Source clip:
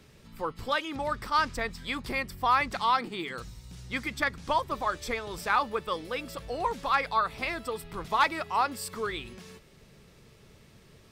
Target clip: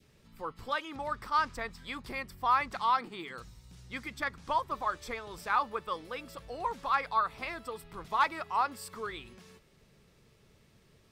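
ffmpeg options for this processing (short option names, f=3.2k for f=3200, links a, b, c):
-af "adynamicequalizer=threshold=0.0158:dfrequency=1100:dqfactor=1.2:tfrequency=1100:tqfactor=1.2:attack=5:release=100:ratio=0.375:range=3:mode=boostabove:tftype=bell,volume=-7.5dB"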